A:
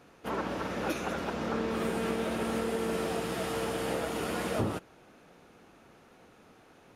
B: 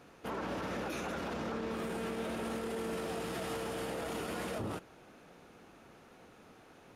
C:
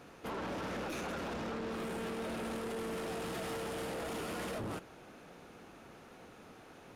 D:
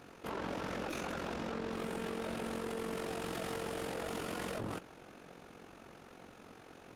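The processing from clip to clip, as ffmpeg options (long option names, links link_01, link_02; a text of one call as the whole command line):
ffmpeg -i in.wav -af "alimiter=level_in=6dB:limit=-24dB:level=0:latency=1:release=32,volume=-6dB" out.wav
ffmpeg -i in.wav -af "asoftclip=type=tanh:threshold=-38.5dB,volume=3dB" out.wav
ffmpeg -i in.wav -af "tremolo=f=45:d=0.621,volume=2.5dB" out.wav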